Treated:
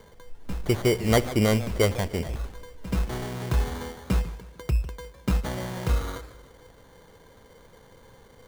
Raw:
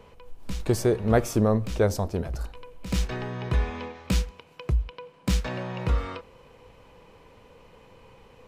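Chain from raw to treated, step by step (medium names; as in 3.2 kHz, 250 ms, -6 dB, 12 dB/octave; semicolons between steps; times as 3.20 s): treble shelf 6.7 kHz -8 dB; sample-and-hold 17×; modulated delay 152 ms, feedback 40%, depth 199 cents, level -15 dB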